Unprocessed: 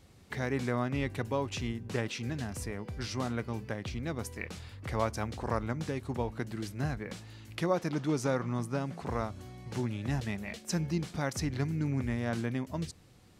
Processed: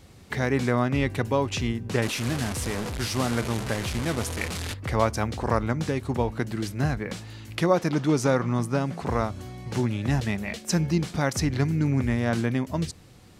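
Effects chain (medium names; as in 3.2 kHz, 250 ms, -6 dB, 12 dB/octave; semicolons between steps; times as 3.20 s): 2.02–4.74 s: one-bit delta coder 64 kbps, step -33.5 dBFS; trim +8 dB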